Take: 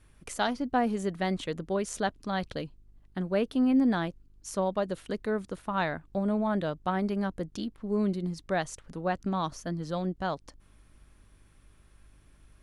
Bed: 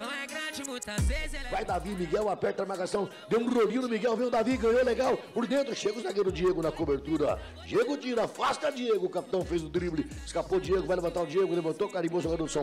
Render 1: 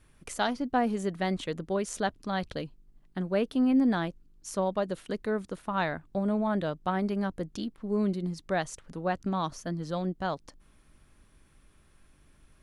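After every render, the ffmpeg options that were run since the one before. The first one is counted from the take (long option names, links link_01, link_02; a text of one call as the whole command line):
ffmpeg -i in.wav -af "bandreject=frequency=50:width_type=h:width=4,bandreject=frequency=100:width_type=h:width=4" out.wav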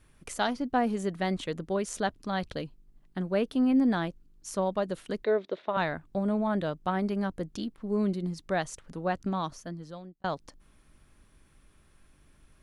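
ffmpeg -i in.wav -filter_complex "[0:a]asettb=1/sr,asplit=3[link_01][link_02][link_03];[link_01]atrim=end=5.244[link_04];[link_02]atrim=start=5.24:end=5.77,asetpts=PTS-STARTPTS,afade=type=in:duration=0.004:curve=qsin,afade=type=out:start_time=0.526:duration=0.004:curve=qsin,highpass=300,equalizer=frequency=390:width_type=q:width=4:gain=8,equalizer=frequency=600:width_type=q:width=4:gain=10,equalizer=frequency=1300:width_type=q:width=4:gain=-3,equalizer=frequency=2100:width_type=q:width=4:gain=5,equalizer=frequency=3700:width_type=q:width=4:gain=9,lowpass=frequency=4300:width=0.5412,lowpass=frequency=4300:width=1.3066[link_05];[link_03]atrim=start=5.766[link_06];[link_04][link_05]acrossfade=duration=0.004:curve1=hsin:curve2=qsin[link_07];[link_07][link_06]acrossfade=duration=0.004:curve1=qsin:curve2=hsin,asplit=2[link_08][link_09];[link_08]atrim=end=10.24,asetpts=PTS-STARTPTS,afade=type=out:start_time=9.27:duration=0.97[link_10];[link_09]atrim=start=10.24,asetpts=PTS-STARTPTS,afade=type=in:duration=0.004:curve=hsin[link_11];[link_10][link_11]concat=n=2:v=0:a=1" out.wav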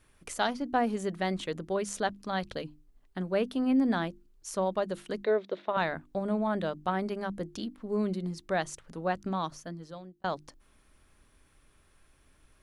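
ffmpeg -i in.wav -af "lowshelf=frequency=190:gain=-3.5,bandreject=frequency=50:width_type=h:width=6,bandreject=frequency=100:width_type=h:width=6,bandreject=frequency=150:width_type=h:width=6,bandreject=frequency=200:width_type=h:width=6,bandreject=frequency=250:width_type=h:width=6,bandreject=frequency=300:width_type=h:width=6,bandreject=frequency=350:width_type=h:width=6" out.wav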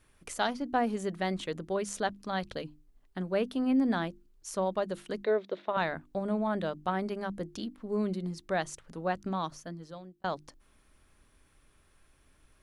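ffmpeg -i in.wav -af "volume=-1dB" out.wav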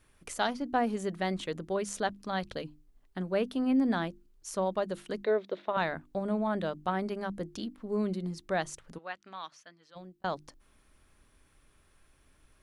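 ffmpeg -i in.wav -filter_complex "[0:a]asplit=3[link_01][link_02][link_03];[link_01]afade=type=out:start_time=8.97:duration=0.02[link_04];[link_02]bandpass=frequency=2500:width_type=q:width=1,afade=type=in:start_time=8.97:duration=0.02,afade=type=out:start_time=9.95:duration=0.02[link_05];[link_03]afade=type=in:start_time=9.95:duration=0.02[link_06];[link_04][link_05][link_06]amix=inputs=3:normalize=0" out.wav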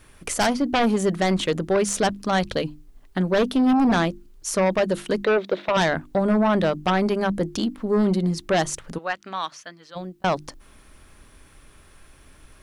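ffmpeg -i in.wav -af "aeval=exprs='0.178*sin(PI/2*3.16*val(0)/0.178)':channel_layout=same" out.wav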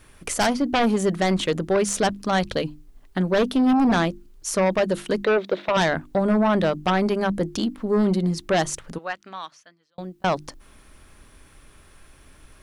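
ffmpeg -i in.wav -filter_complex "[0:a]asplit=2[link_01][link_02];[link_01]atrim=end=9.98,asetpts=PTS-STARTPTS,afade=type=out:start_time=8.76:duration=1.22[link_03];[link_02]atrim=start=9.98,asetpts=PTS-STARTPTS,afade=type=in:duration=0.004:curve=hsin[link_04];[link_03][link_04]concat=n=2:v=0:a=1" out.wav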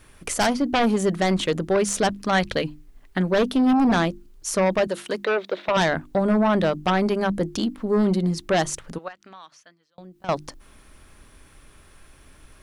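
ffmpeg -i in.wav -filter_complex "[0:a]asettb=1/sr,asplit=3[link_01][link_02][link_03];[link_01]atrim=end=2.164[link_04];[link_02]atrim=start=2.16:end=3.3,asetpts=PTS-STARTPTS,afade=type=in:duration=0.004:curve=qsin,afade=type=out:start_time=1.136:duration=0.004:curve=qsin,equalizer=frequency=2000:width=1.5:gain=5[link_05];[link_03]atrim=start=3.296[link_06];[link_04][link_05]acrossfade=duration=0.004:curve1=hsin:curve2=qsin[link_07];[link_07][link_06]acrossfade=duration=0.004:curve1=qsin:curve2=hsin,asettb=1/sr,asplit=3[link_08][link_09][link_10];[link_08]atrim=end=4.874[link_11];[link_09]atrim=start=4.87:end=5.66,asetpts=PTS-STARTPTS,afade=type=in:duration=0.004:curve=qsin,afade=type=out:start_time=0.786:duration=0.004:curve=qsin,highpass=frequency=480:poles=1[link_12];[link_10]atrim=start=5.656[link_13];[link_11][link_12]acrossfade=duration=0.004:curve1=hsin:curve2=qsin[link_14];[link_14][link_13]acrossfade=duration=0.004:curve1=qsin:curve2=hsin,asettb=1/sr,asplit=3[link_15][link_16][link_17];[link_15]atrim=end=9.084[link_18];[link_16]atrim=start=9.08:end=10.29,asetpts=PTS-STARTPTS,afade=type=in:duration=0.004:curve=qsin,afade=type=out:start_time=1.206:duration=0.004:curve=qsin,acompressor=threshold=-43dB:ratio=2.5:attack=3.2:release=140:knee=1:detection=peak[link_19];[link_17]atrim=start=10.286[link_20];[link_18][link_19]acrossfade=duration=0.004:curve1=hsin:curve2=qsin[link_21];[link_21][link_20]acrossfade=duration=0.004:curve1=qsin:curve2=hsin" out.wav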